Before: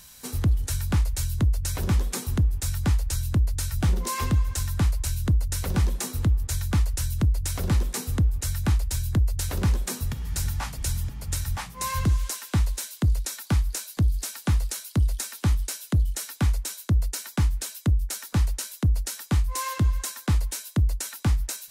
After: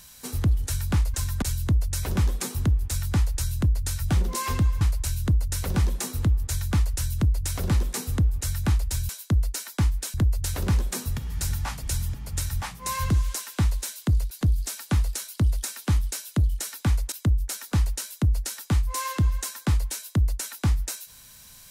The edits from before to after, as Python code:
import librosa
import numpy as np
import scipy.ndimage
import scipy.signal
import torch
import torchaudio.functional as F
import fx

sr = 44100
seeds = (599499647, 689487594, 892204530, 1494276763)

y = fx.edit(x, sr, fx.move(start_s=4.53, length_s=0.28, to_s=1.14),
    fx.cut(start_s=13.26, length_s=0.61),
    fx.move(start_s=16.68, length_s=1.05, to_s=9.09), tone=tone)